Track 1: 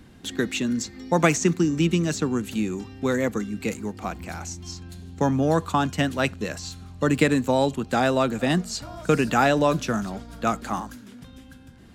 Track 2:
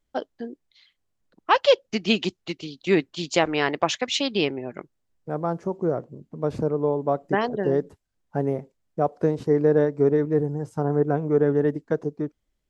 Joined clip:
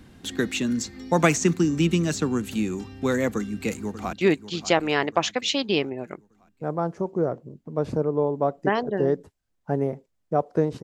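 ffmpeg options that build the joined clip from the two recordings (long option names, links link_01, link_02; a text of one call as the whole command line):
ffmpeg -i cue0.wav -i cue1.wav -filter_complex "[0:a]apad=whole_dur=10.83,atrim=end=10.83,atrim=end=4.132[link_01];[1:a]atrim=start=2.788:end=9.49[link_02];[link_01][link_02]acrossfade=duration=0.004:curve1=hsin:curve2=hsin,asplit=2[link_03][link_04];[link_04]afade=type=in:start_time=3.34:duration=0.01,afade=type=out:start_time=4.13:duration=0.01,aecho=0:1:590|1180|1770|2360|2950:0.237137|0.118569|0.0592843|0.0296422|0.0148211[link_05];[link_03][link_05]amix=inputs=2:normalize=0" out.wav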